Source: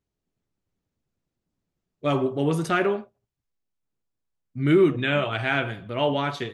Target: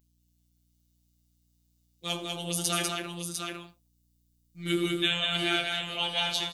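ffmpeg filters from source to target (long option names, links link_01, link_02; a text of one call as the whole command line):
ffmpeg -i in.wav -filter_complex "[0:a]afftfilt=real='hypot(re,im)*cos(PI*b)':imag='0':win_size=1024:overlap=0.75,asplit=2[link_01][link_02];[link_02]aecho=0:1:83|196|666|700:0.119|0.668|0.112|0.501[link_03];[link_01][link_03]amix=inputs=2:normalize=0,aeval=exprs='val(0)+0.001*(sin(2*PI*60*n/s)+sin(2*PI*2*60*n/s)/2+sin(2*PI*3*60*n/s)/3+sin(2*PI*4*60*n/s)/4+sin(2*PI*5*60*n/s)/5)':channel_layout=same,crystalizer=i=6.5:c=0,highshelf=frequency=2500:width_type=q:width=1.5:gain=6.5,volume=-9dB" out.wav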